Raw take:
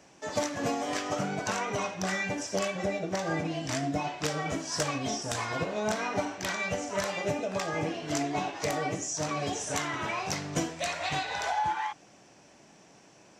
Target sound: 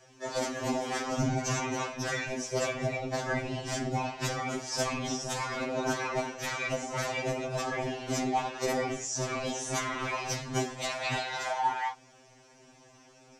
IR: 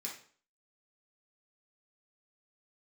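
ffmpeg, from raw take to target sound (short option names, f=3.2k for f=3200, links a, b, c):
-filter_complex "[0:a]asettb=1/sr,asplit=3[a][b][c];[a]atrim=end=1.194[d];[b]atrim=start=1.19:end=1.75,asetpts=PTS-STARTPTS,afade=t=in:d=0.004:c=qsin,afade=t=out:st=0.556:d=0.004:c=qsin,equalizer=f=200:t=o:w=0.33:g=10,equalizer=f=1.25k:t=o:w=0.33:g=-5,equalizer=f=6.3k:t=o:w=0.33:g=7,equalizer=f=10k:t=o:w=0.33:g=-3[e];[c]atrim=start=1.746[f];[d][e]acrossfade=d=0.004:c1=hsin:c2=qsin[g];[g][f]acrossfade=d=0.004:c1=qsin:c2=hsin,afftfilt=real='hypot(re,im)*cos(2*PI*random(0))':imag='hypot(re,im)*sin(2*PI*random(1))':win_size=512:overlap=0.75,afftfilt=real='re*2.45*eq(mod(b,6),0)':imag='im*2.45*eq(mod(b,6),0)':win_size=2048:overlap=0.75,volume=7.5dB"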